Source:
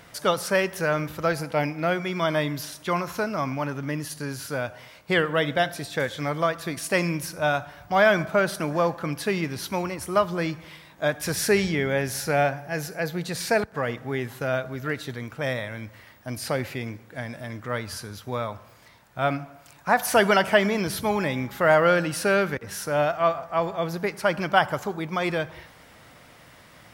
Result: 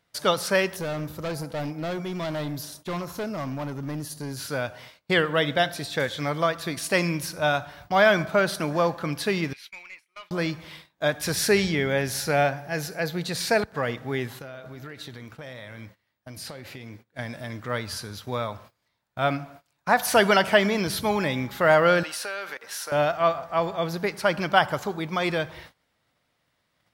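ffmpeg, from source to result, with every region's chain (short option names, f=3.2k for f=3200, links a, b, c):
-filter_complex "[0:a]asettb=1/sr,asplit=3[a][b][c];[a]atrim=end=0.764[d];[b]atrim=start=0.76:end=4.37,asetpts=PTS-STARTPTS,afade=t=in:d=0.004:c=qsin,afade=t=out:st=3.606:d=0.004:c=qsin,equalizer=f=2.4k:t=o:w=2.2:g=-10,asoftclip=type=hard:threshold=-27dB[e];[c]atrim=start=4.366[f];[d][e]acrossfade=d=0.004:c1=hsin:c2=qsin[g];[g][f]acrossfade=d=0.004:c1=qsin:c2=hsin,asettb=1/sr,asplit=3[h][i][j];[h]atrim=end=9.534[k];[i]atrim=start=9.53:end=10.31,asetpts=PTS-STARTPTS,afade=t=in:d=0.004:c=qsin,afade=t=out:st=0.776:d=0.004:c=qsin,bandpass=f=2.3k:t=q:w=5.6,aemphasis=mode=production:type=50fm,aeval=exprs='(tanh(50.1*val(0)+0.15)-tanh(0.15))/50.1':c=same[l];[j]atrim=start=10.306[m];[k][l]acrossfade=d=0.004:c1=hsin:c2=qsin[n];[n][m]acrossfade=d=0.004:c1=qsin:c2=hsin,asettb=1/sr,asplit=3[o][p][q];[o]atrim=end=14.394[r];[p]atrim=start=14.39:end=17.19,asetpts=PTS-STARTPTS,afade=t=in:d=0.004:c=qsin,afade=t=out:st=2.796:d=0.004:c=qsin,acompressor=threshold=-30dB:ratio=12:attack=3.2:release=140:knee=1:detection=peak,flanger=delay=5.3:depth=8:regen=-84:speed=1.6:shape=sinusoidal[s];[q]atrim=start=17.186[t];[r][s]acrossfade=d=0.004:c1=hsin:c2=qsin[u];[u][t]acrossfade=d=0.004:c1=qsin:c2=hsin,asettb=1/sr,asplit=3[v][w][x];[v]atrim=end=22.034[y];[w]atrim=start=22.03:end=22.92,asetpts=PTS-STARTPTS,afade=t=in:d=0.004:c=qsin,afade=t=out:st=0.886:d=0.004:c=qsin,highpass=680,acompressor=threshold=-30dB:ratio=4:attack=3.2:release=140:knee=1:detection=peak[z];[x]atrim=start=22.916[aa];[y][z]acrossfade=d=0.004:c1=hsin:c2=qsin[ab];[ab][aa]acrossfade=d=0.004:c1=qsin:c2=hsin,agate=range=-23dB:threshold=-46dB:ratio=16:detection=peak,equalizer=f=4k:w=1.9:g=5"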